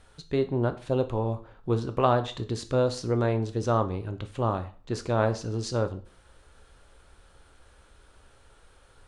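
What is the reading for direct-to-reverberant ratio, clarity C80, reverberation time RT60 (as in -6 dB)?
9.0 dB, 19.0 dB, 0.40 s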